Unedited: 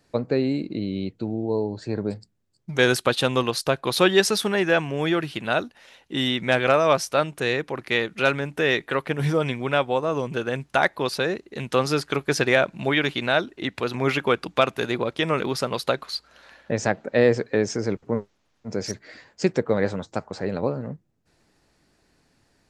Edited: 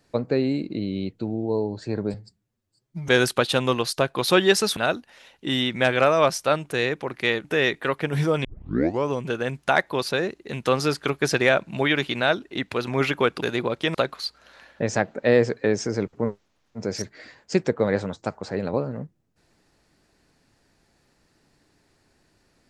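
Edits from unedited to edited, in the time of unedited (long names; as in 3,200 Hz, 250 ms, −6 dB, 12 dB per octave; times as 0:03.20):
0:02.14–0:02.77: time-stretch 1.5×
0:04.45–0:05.44: remove
0:08.12–0:08.51: remove
0:09.51: tape start 0.66 s
0:14.49–0:14.78: remove
0:15.30–0:15.84: remove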